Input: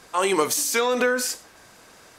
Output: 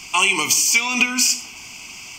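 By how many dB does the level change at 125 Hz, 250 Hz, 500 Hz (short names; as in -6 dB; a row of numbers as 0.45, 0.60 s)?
n/a, +1.0 dB, -12.5 dB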